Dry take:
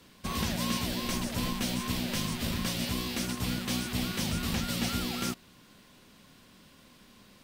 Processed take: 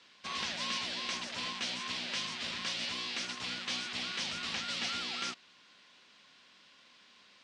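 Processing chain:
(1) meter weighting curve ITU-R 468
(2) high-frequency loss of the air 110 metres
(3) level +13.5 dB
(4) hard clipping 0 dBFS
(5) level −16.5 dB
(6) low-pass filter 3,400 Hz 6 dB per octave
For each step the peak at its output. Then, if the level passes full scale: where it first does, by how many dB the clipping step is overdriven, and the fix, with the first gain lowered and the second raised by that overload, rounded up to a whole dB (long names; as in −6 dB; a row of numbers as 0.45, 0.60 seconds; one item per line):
−11.5, −16.5, −3.0, −3.0, −19.5, −22.0 dBFS
no step passes full scale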